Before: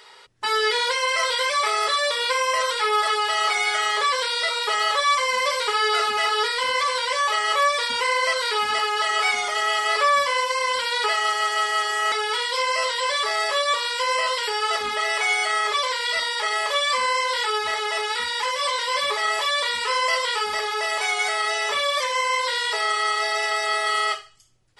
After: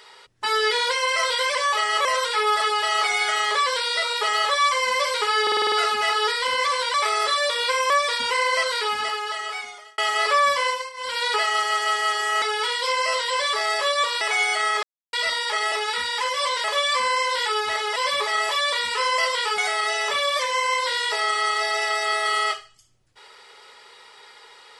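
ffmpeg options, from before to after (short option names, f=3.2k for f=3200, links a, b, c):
-filter_complex "[0:a]asplit=21[a][b][c][d][e][f][g][h][i][j][k][l][m][n][o][p][q][r][s][t][u];[a]atrim=end=1.552[v];[b]atrim=start=7.098:end=7.602[w];[c]atrim=start=2.508:end=5.932[x];[d]atrim=start=5.878:end=5.932[y];[e]atrim=start=5.878:end=5.932[z];[f]atrim=start=5.878:end=5.932[aa];[g]atrim=start=5.878:end=5.932[ab];[h]atrim=start=5.878:end=5.932[ac];[i]atrim=start=5.878:end=7.102[ad];[j]atrim=start=1.548:end=2.512[ae];[k]atrim=start=7.598:end=9.68,asetpts=PTS-STARTPTS,afade=t=out:st=0.752:d=1.33[af];[l]atrim=start=9.68:end=10.62,asetpts=PTS-STARTPTS,afade=t=in:d=0.004:c=hsin,afade=t=out:st=0.68:d=0.26:silence=0.125893[ag];[m]atrim=start=10.62:end=10.64,asetpts=PTS-STARTPTS,volume=-18dB[ah];[n]atrim=start=10.64:end=13.912,asetpts=PTS-STARTPTS,afade=t=in:d=0.26:silence=0.125893[ai];[o]atrim=start=15.108:end=15.73,asetpts=PTS-STARTPTS,afade=t=out:st=0.618:d=0.004:c=hsin[aj];[p]atrim=start=15.73:end=16.03,asetpts=PTS-STARTPTS,volume=0[ak];[q]atrim=start=16.03:end=16.622,asetpts=PTS-STARTPTS,afade=t=in:d=0.004:c=hsin[al];[r]atrim=start=17.938:end=18.862[am];[s]atrim=start=16.618:end=17.942[an];[t]atrim=start=18.858:end=20.482[ao];[u]atrim=start=21.188[ap];[v][w]acrossfade=d=0.004:c1=hsin:c2=hsin[aq];[aq][x]acrossfade=d=0.004:c1=hsin:c2=hsin[ar];[ar][y]acrossfade=d=0.004:c1=hsin:c2=hsin[as];[as][z]acrossfade=d=0.004:c1=hsin:c2=hsin[at];[at][aa]acrossfade=d=0.004:c1=hsin:c2=hsin[au];[au][ab]acrossfade=d=0.004:c1=hsin:c2=hsin[av];[av][ac]acrossfade=d=0.004:c1=hsin:c2=hsin[aw];[aw][ad]acrossfade=d=0.004:c1=hsin:c2=hsin[ax];[ax][ae]acrossfade=d=0.004:c1=hsin:c2=hsin[ay];[af][ag][ah][ai]concat=n=4:v=0:a=1[az];[ay][az]acrossfade=d=0.004:c1=hsin:c2=hsin[ba];[aj][ak][al]concat=n=3:v=0:a=1[bb];[ba][bb]acrossfade=d=0.004:c1=hsin:c2=hsin[bc];[bc][am]acrossfade=d=0.004:c1=hsin:c2=hsin[bd];[bd][an]acrossfade=d=0.004:c1=hsin:c2=hsin[be];[be][ao]acrossfade=d=0.004:c1=hsin:c2=hsin[bf];[bf][ap]acrossfade=d=0.004:c1=hsin:c2=hsin"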